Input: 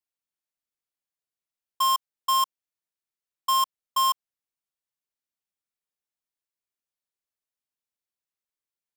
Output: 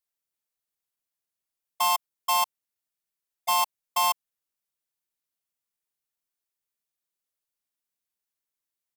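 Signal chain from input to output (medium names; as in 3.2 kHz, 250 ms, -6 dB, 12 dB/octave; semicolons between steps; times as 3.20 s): treble shelf 9.7 kHz +7 dB; harmony voices -7 st -7 dB, -3 st -2 dB; saturation -13.5 dBFS, distortion -19 dB; trim -2.5 dB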